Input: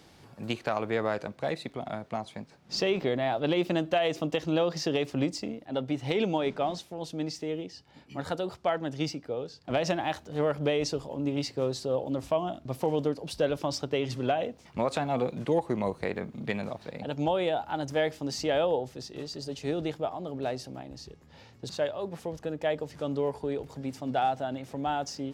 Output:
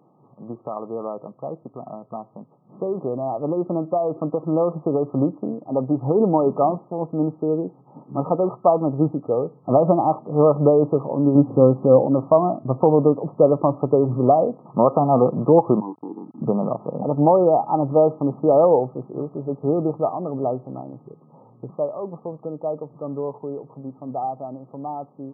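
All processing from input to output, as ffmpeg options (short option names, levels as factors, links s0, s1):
-filter_complex "[0:a]asettb=1/sr,asplit=3[s0][s1][s2];[s0]atrim=end=11.354[s3];[s1]atrim=start=11.35:end=12.07,asetpts=PTS-STARTPTS,afade=t=in:d=0.004:c=qsin,afade=t=out:st=0.716:d=0.004:c=qsin,lowshelf=f=190:g=11,acompressor=mode=upward:threshold=0.0355:ratio=2.5:attack=3.2:release=140:knee=2.83:detection=peak,aecho=1:1:3.8:0.32,atrim=end_sample=31752[s4];[s2]atrim=start=12.066[s5];[s3][s4]acrossfade=d=0.004:c1=hsin:c2=qsin[s6];[s6][s5]acrossfade=d=0.004:c1=qsin:c2=hsin,asettb=1/sr,asplit=3[s7][s8][s9];[s7]atrim=end=15.804[s10];[s8]atrim=start=15.8:end=16.42,asetpts=PTS-STARTPTS,afade=t=in:d=0.004:c=qsin,afade=t=out:st=0.616:d=0.004:c=qsin,asplit=3[s11][s12][s13];[s11]bandpass=f=300:t=q:w=8,volume=1[s14];[s12]bandpass=f=870:t=q:w=8,volume=0.501[s15];[s13]bandpass=f=2240:t=q:w=8,volume=0.355[s16];[s14][s15][s16]amix=inputs=3:normalize=0,aeval=exprs='val(0)*gte(abs(val(0)),0.00106)':c=same[s17];[s9]atrim=start=16.416[s18];[s10][s17]acrossfade=d=0.004:c1=hsin:c2=qsin[s19];[s19][s18]acrossfade=d=0.004:c1=qsin:c2=hsin,afftfilt=real='re*between(b*sr/4096,110,1300)':imag='im*between(b*sr/4096,110,1300)':win_size=4096:overlap=0.75,dynaudnorm=f=510:g=21:m=5.62"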